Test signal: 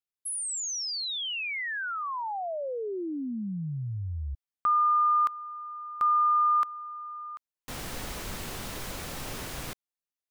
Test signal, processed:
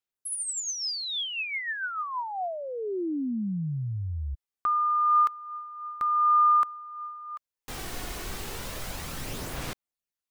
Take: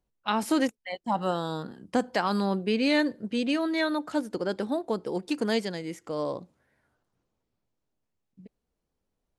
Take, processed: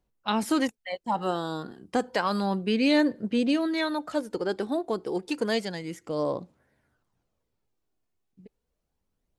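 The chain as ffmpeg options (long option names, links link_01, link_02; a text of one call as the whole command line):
ffmpeg -i in.wav -af "aphaser=in_gain=1:out_gain=1:delay=2.8:decay=0.34:speed=0.31:type=sinusoidal" out.wav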